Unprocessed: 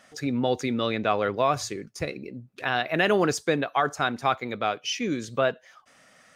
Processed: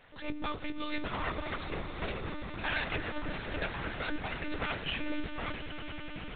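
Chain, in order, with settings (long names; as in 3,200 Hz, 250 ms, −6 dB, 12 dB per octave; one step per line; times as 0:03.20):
lower of the sound and its delayed copy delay 8.7 ms
dynamic equaliser 660 Hz, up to −7 dB, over −41 dBFS, Q 1.5
compressor whose output falls as the input rises −31 dBFS, ratio −0.5
flanger 0.92 Hz, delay 6.7 ms, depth 3.1 ms, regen −62%
Butterworth high-pass 170 Hz 72 dB per octave
echo that builds up and dies away 103 ms, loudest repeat 8, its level −15 dB
on a send at −17.5 dB: convolution reverb RT60 0.45 s, pre-delay 35 ms
on the sum: one-pitch LPC vocoder at 8 kHz 300 Hz
level +2 dB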